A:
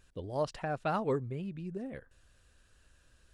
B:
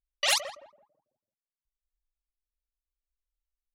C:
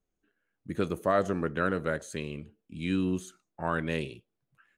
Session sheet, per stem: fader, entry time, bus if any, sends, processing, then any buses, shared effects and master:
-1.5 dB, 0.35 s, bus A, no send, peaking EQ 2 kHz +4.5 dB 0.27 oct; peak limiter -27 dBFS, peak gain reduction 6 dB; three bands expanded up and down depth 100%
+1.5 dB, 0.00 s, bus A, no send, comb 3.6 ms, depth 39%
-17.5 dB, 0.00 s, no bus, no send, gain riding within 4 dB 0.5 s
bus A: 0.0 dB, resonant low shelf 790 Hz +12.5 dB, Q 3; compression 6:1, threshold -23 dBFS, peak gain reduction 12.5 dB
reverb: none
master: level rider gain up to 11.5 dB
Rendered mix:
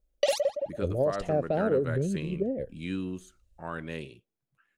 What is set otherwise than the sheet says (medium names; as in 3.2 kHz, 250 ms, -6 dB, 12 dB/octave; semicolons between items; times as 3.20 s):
stem A: entry 0.35 s -> 0.65 s; stem C -17.5 dB -> -5.5 dB; master: missing level rider gain up to 11.5 dB